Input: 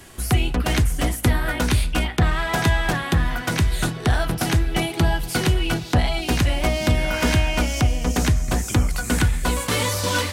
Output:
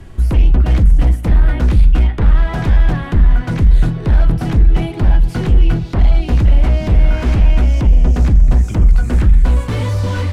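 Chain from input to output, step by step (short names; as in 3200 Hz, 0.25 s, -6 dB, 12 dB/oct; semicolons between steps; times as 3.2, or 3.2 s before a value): sine folder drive 9 dB, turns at -7.5 dBFS; RIAA curve playback; gain -12.5 dB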